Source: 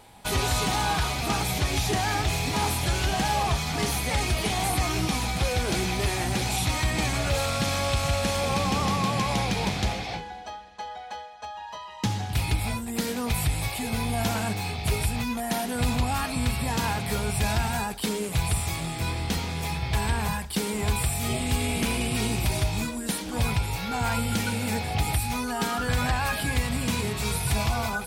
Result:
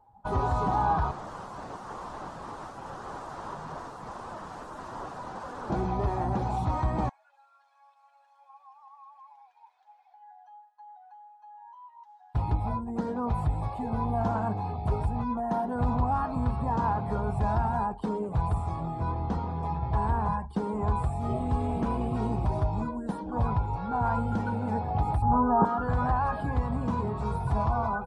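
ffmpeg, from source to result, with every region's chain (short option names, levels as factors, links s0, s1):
-filter_complex "[0:a]asettb=1/sr,asplit=3[s0][s1][s2];[s0]atrim=end=1.114[s3];[s1]atrim=start=1.11:end=5.7,asetpts=PTS-STARTPTS,afade=t=in:d=0.004:c=qsin,afade=t=out:st=4.586:d=0.004:c=qsin,highpass=f=130:w=0.5412,highpass=f=130:w=1.3066,aeval=exprs='(mod(21.1*val(0)+1,2)-1)/21.1':c=same[s4];[s2]atrim=start=5.696[s5];[s3][s4]acrossfade=d=0.004:c1=hsin:c2=qsin[s6];[s6][s5]acrossfade=d=0.004:c1=qsin:c2=hsin,asettb=1/sr,asplit=3[s7][s8][s9];[s7]atrim=end=7.094[s10];[s8]atrim=start=7.09:end=12.35,asetpts=PTS-STARTPTS,afade=t=in:d=0.004:c=qsin,afade=t=out:st=5.256:d=0.004:c=qsin,highpass=f=940:w=0.5412,highpass=f=940:w=1.3066,equalizer=f=1200:t=o:w=0.28:g=-12.5,acompressor=threshold=0.00501:ratio=4:attack=3.2:release=140:knee=1:detection=peak[s11];[s9]atrim=start=12.346[s12];[s10][s11]acrossfade=d=0.004:c1=hsin:c2=qsin[s13];[s13][s12]acrossfade=d=0.004:c1=qsin:c2=hsin,asettb=1/sr,asplit=3[s14][s15][s16];[s14]atrim=end=25.224[s17];[s15]atrim=start=25.22:end=25.65,asetpts=PTS-STARTPTS,afade=t=in:d=0.004:c=qsin,afade=t=out:st=0.426:d=0.004:c=qsin,lowpass=f=1300:w=0.5412,lowpass=f=1300:w=1.3066,acontrast=75[s18];[s16]atrim=start=25.646[s19];[s17][s18]acrossfade=d=0.004:c1=hsin:c2=qsin[s20];[s20][s19]acrossfade=d=0.004:c1=qsin:c2=hsin,lowpass=9000,afftdn=nr=15:nf=-40,firequalizer=gain_entry='entry(460,0);entry(1000,6);entry(2200,-21)':delay=0.05:min_phase=1,volume=0.841"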